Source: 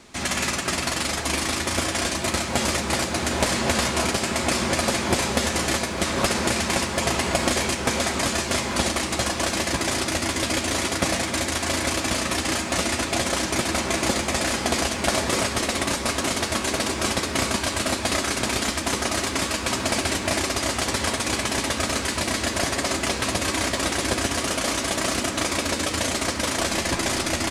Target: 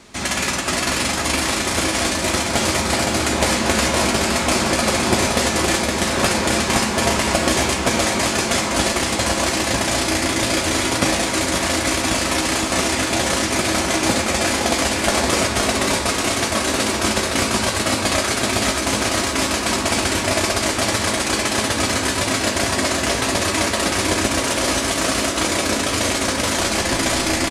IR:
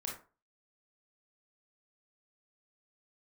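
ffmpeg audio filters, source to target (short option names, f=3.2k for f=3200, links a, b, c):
-filter_complex "[0:a]asplit=2[a][b];[b]adelay=19,volume=-11dB[c];[a][c]amix=inputs=2:normalize=0,aecho=1:1:515:0.596,asplit=2[d][e];[1:a]atrim=start_sample=2205,asetrate=30429,aresample=44100[f];[e][f]afir=irnorm=-1:irlink=0,volume=-6dB[g];[d][g]amix=inputs=2:normalize=0"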